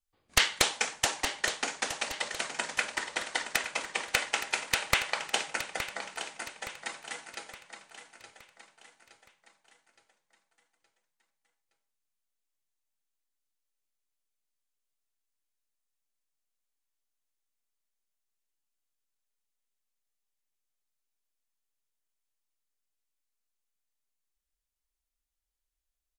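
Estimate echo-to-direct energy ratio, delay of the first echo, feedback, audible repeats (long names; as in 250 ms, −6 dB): −9.5 dB, 868 ms, 46%, 4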